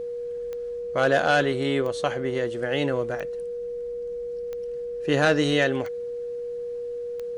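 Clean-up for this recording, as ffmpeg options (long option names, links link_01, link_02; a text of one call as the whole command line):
ffmpeg -i in.wav -af "adeclick=threshold=4,bandreject=frequency=480:width=30" out.wav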